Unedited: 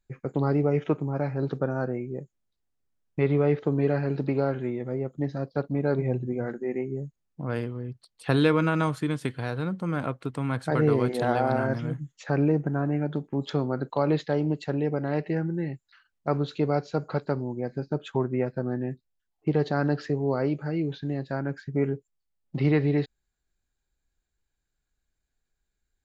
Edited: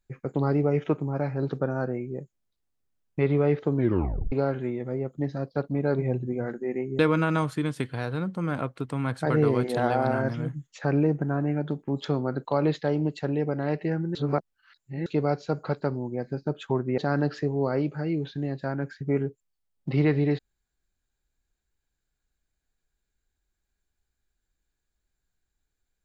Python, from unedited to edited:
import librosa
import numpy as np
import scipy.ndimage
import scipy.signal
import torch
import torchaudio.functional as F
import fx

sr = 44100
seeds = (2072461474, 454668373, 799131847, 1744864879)

y = fx.edit(x, sr, fx.tape_stop(start_s=3.77, length_s=0.55),
    fx.cut(start_s=6.99, length_s=1.45),
    fx.reverse_span(start_s=15.6, length_s=0.91),
    fx.cut(start_s=18.43, length_s=1.22), tone=tone)